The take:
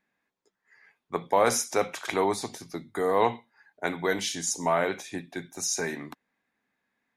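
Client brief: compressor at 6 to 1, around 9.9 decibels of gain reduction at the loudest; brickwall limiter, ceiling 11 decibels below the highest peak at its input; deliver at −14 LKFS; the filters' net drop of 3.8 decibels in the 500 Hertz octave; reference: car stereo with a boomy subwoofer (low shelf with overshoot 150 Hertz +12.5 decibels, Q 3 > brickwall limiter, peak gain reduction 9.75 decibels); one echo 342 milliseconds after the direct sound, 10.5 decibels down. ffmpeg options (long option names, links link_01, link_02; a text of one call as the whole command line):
ffmpeg -i in.wav -af "equalizer=frequency=500:width_type=o:gain=-3,acompressor=threshold=-29dB:ratio=6,alimiter=level_in=1.5dB:limit=-24dB:level=0:latency=1,volume=-1.5dB,lowshelf=frequency=150:width_type=q:width=3:gain=12.5,aecho=1:1:342:0.299,volume=28dB,alimiter=limit=-4.5dB:level=0:latency=1" out.wav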